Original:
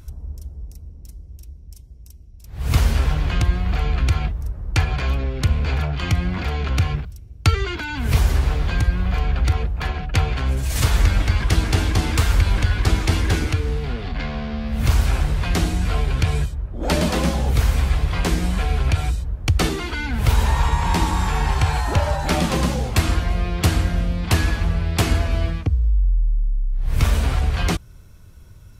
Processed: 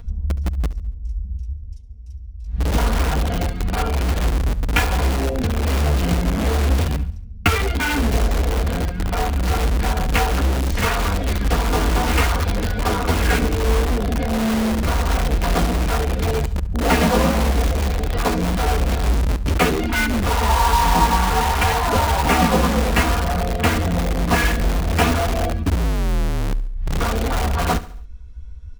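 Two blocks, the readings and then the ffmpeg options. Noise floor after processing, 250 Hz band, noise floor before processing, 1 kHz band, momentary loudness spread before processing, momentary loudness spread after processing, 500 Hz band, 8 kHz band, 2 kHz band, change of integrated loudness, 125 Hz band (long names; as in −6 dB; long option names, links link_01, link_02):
−33 dBFS, +4.5 dB, −42 dBFS, +7.0 dB, 8 LU, 9 LU, +6.0 dB, +2.5 dB, +4.0 dB, +1.5 dB, −1.5 dB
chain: -filter_complex "[0:a]lowpass=5700,afwtdn=0.0501,aecho=1:1:4.2:0.99,acrossover=split=430|3800[link_01][link_02][link_03];[link_01]acompressor=threshold=-20dB:ratio=16[link_04];[link_04][link_02][link_03]amix=inputs=3:normalize=0,flanger=delay=8.7:depth=9.9:regen=-13:speed=0.55:shape=sinusoidal,asplit=2[link_05][link_06];[link_06]aeval=exprs='(mod(18.8*val(0)+1,2)-1)/18.8':channel_layout=same,volume=-4dB[link_07];[link_05][link_07]amix=inputs=2:normalize=0,aecho=1:1:70|140|210|280:0.141|0.065|0.0299|0.0137,volume=7.5dB"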